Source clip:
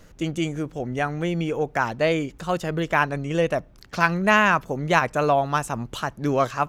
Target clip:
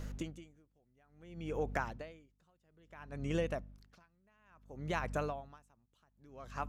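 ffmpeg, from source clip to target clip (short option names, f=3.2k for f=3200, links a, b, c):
-af "acompressor=threshold=-32dB:ratio=6,aeval=exprs='val(0)+0.00891*(sin(2*PI*50*n/s)+sin(2*PI*2*50*n/s)/2+sin(2*PI*3*50*n/s)/3+sin(2*PI*4*50*n/s)/4+sin(2*PI*5*50*n/s)/5)':c=same,aeval=exprs='val(0)*pow(10,-39*(0.5-0.5*cos(2*PI*0.59*n/s))/20)':c=same"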